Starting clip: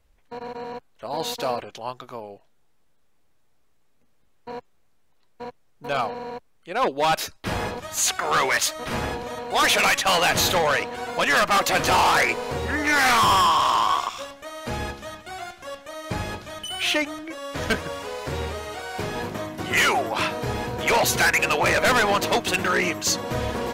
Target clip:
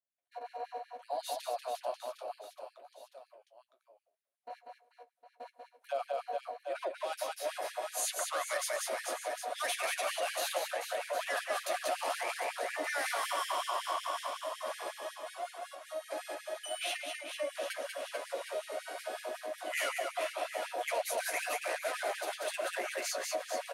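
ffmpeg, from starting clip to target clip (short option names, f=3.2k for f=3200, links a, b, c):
-filter_complex "[0:a]asoftclip=type=hard:threshold=-14.5dB,superequalizer=8b=3.98:16b=2.82,flanger=delay=7.3:depth=9.8:regen=36:speed=0.72:shape=triangular,agate=range=-33dB:threshold=-52dB:ratio=3:detection=peak,asplit=2[a][b];[b]aecho=0:1:190|437|758.1|1176|1718:0.631|0.398|0.251|0.158|0.1[c];[a][c]amix=inputs=2:normalize=0,acrossover=split=120[d][e];[e]acompressor=threshold=-21dB:ratio=4[f];[d][f]amix=inputs=2:normalize=0,highpass=f=63:w=0.5412,highpass=f=63:w=1.3066,equalizer=f=92:t=o:w=1.4:g=-13.5,asplit=2[g][h];[h]adelay=107,lowpass=f=4.6k:p=1,volume=-22dB,asplit=2[i][j];[j]adelay=107,lowpass=f=4.6k:p=1,volume=0.19[k];[i][k]amix=inputs=2:normalize=0[l];[g][l]amix=inputs=2:normalize=0,afftfilt=real='re*gte(b*sr/1024,240*pow(1700/240,0.5+0.5*sin(2*PI*5.4*pts/sr)))':imag='im*gte(b*sr/1024,240*pow(1700/240,0.5+0.5*sin(2*PI*5.4*pts/sr)))':win_size=1024:overlap=0.75,volume=-9dB"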